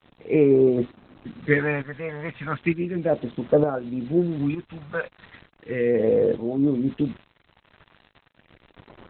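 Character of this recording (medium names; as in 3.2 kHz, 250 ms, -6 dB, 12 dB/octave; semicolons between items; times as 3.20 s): phasing stages 2, 0.35 Hz, lowest notch 320–2000 Hz; a quantiser's noise floor 8-bit, dither none; tremolo saw up 1.1 Hz, depth 65%; Opus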